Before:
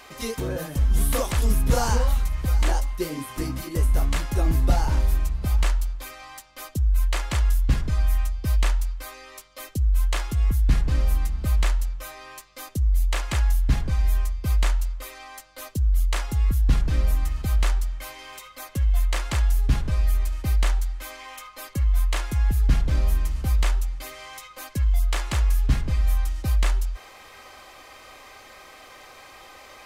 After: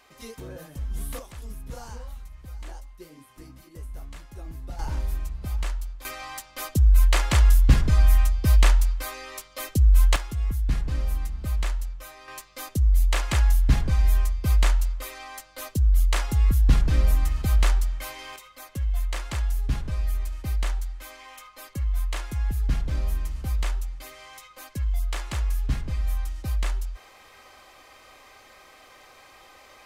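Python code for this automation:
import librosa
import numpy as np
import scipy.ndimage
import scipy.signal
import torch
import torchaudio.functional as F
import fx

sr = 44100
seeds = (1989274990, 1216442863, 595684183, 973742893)

y = fx.gain(x, sr, db=fx.steps((0.0, -11.0), (1.19, -17.5), (4.79, -7.0), (6.05, 4.5), (10.16, -5.0), (12.28, 1.5), (18.36, -5.0)))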